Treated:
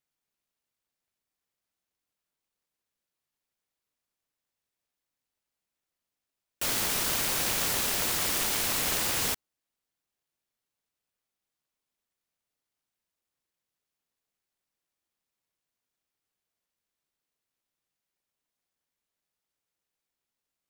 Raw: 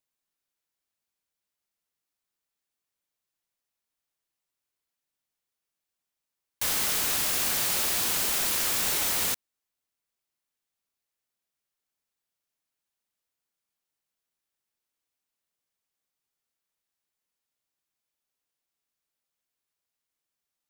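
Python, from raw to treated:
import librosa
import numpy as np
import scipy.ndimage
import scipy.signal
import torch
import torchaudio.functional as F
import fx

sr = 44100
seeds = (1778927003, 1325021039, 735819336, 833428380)

y = fx.noise_mod_delay(x, sr, seeds[0], noise_hz=1500.0, depth_ms=0.24)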